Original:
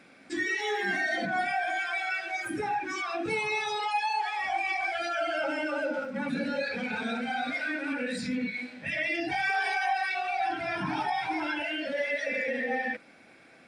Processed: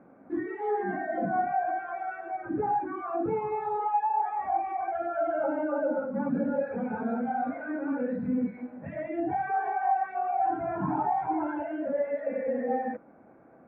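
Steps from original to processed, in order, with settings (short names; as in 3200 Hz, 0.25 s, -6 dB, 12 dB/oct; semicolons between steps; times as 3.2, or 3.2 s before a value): LPF 1100 Hz 24 dB/oct; gain +3.5 dB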